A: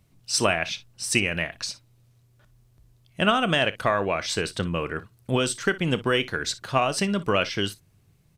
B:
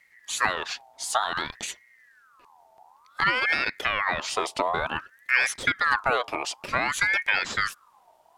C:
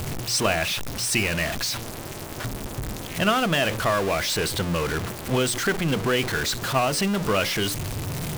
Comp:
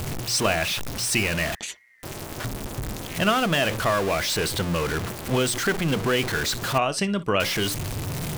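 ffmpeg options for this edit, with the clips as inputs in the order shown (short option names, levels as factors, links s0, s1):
-filter_complex "[2:a]asplit=3[s0][s1][s2];[s0]atrim=end=1.552[s3];[1:a]atrim=start=1.548:end=2.032[s4];[s1]atrim=start=2.028:end=6.782[s5];[0:a]atrim=start=6.778:end=7.402[s6];[s2]atrim=start=7.398[s7];[s3][s4]acrossfade=d=0.004:c1=hsin:c2=hsin[s8];[s8][s5]acrossfade=d=0.004:c1=hsin:c2=hsin[s9];[s9][s6]acrossfade=d=0.004:c1=hsin:c2=hsin[s10];[s10][s7]acrossfade=d=0.004:c1=hsin:c2=hsin"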